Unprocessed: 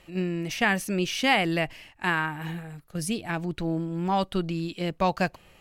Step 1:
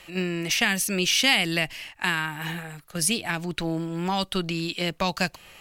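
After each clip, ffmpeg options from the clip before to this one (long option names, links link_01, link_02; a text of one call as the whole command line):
ffmpeg -i in.wav -filter_complex "[0:a]tiltshelf=frequency=720:gain=-6,acrossover=split=300|3000[link_01][link_02][link_03];[link_02]acompressor=threshold=-33dB:ratio=3[link_04];[link_01][link_04][link_03]amix=inputs=3:normalize=0,volume=5dB" out.wav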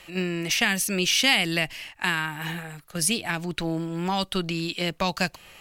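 ffmpeg -i in.wav -af anull out.wav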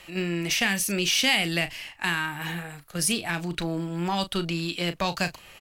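ffmpeg -i in.wav -filter_complex "[0:a]asplit=2[link_01][link_02];[link_02]asoftclip=type=tanh:threshold=-22dB,volume=-5dB[link_03];[link_01][link_03]amix=inputs=2:normalize=0,asplit=2[link_04][link_05];[link_05]adelay=35,volume=-11.5dB[link_06];[link_04][link_06]amix=inputs=2:normalize=0,volume=-4dB" out.wav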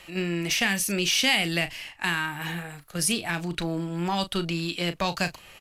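ffmpeg -i in.wav -ar 32000 -c:a libvorbis -b:a 128k out.ogg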